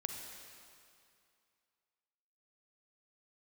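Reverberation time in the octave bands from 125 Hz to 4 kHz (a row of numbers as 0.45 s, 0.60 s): 2.3 s, 2.4 s, 2.3 s, 2.5 s, 2.3 s, 2.2 s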